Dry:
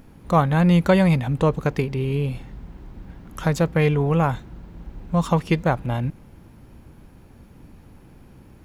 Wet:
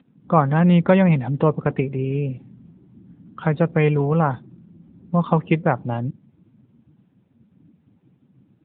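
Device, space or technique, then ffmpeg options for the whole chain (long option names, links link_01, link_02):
mobile call with aggressive noise cancelling: -af "highpass=120,afftdn=noise_reduction=17:noise_floor=-36,volume=2dB" -ar 8000 -c:a libopencore_amrnb -b:a 10200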